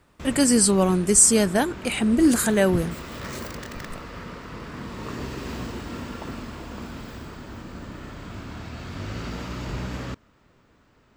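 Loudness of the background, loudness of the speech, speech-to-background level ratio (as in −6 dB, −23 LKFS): −36.0 LKFS, −19.0 LKFS, 17.0 dB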